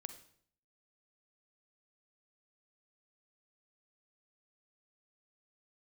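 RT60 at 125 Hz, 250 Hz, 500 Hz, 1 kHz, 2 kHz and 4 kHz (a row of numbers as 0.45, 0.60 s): 0.75, 0.70, 0.65, 0.55, 0.55, 0.55 s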